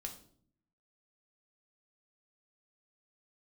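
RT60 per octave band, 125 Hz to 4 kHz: 1.0, 0.95, 0.65, 0.50, 0.40, 0.45 seconds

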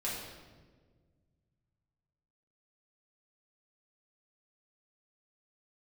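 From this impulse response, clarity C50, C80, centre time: 1.0 dB, 3.0 dB, 75 ms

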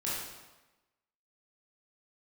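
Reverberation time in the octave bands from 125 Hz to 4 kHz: 1.0, 1.1, 1.1, 1.1, 1.0, 0.90 seconds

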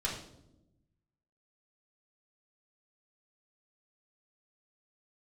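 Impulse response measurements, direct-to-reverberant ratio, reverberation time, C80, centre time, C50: −4.5 dB, non-exponential decay, 8.5 dB, 34 ms, 5.0 dB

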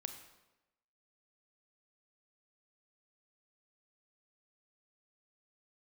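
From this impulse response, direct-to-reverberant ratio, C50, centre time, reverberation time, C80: 6.5 dB, 8.5 dB, 18 ms, 1.0 s, 10.5 dB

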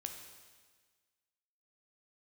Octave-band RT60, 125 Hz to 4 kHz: 1.5, 1.5, 1.5, 1.5, 1.5, 1.5 seconds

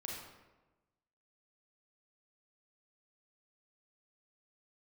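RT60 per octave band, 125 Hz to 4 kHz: 1.3, 1.3, 1.2, 1.1, 0.95, 0.70 seconds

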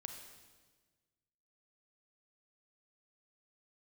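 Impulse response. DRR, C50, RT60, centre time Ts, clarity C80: 4.5 dB, 5.5 dB, 1.4 s, 35 ms, 7.0 dB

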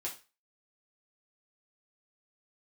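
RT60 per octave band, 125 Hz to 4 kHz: 0.30, 0.30, 0.30, 0.30, 0.30, 0.30 seconds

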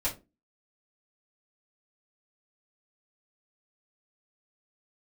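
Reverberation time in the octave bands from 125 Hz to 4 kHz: 0.30, 0.40, 0.30, 0.20, 0.20, 0.15 seconds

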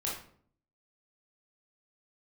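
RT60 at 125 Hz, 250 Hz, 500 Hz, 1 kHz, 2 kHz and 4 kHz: 0.80, 0.80, 0.60, 0.50, 0.45, 0.35 seconds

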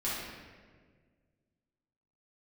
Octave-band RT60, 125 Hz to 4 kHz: 2.3, 2.1, 1.9, 1.4, 1.4, 1.0 seconds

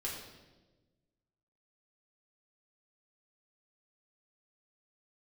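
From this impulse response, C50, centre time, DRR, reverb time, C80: 3.0 dB, 54 ms, −5.5 dB, 1.2 s, 5.0 dB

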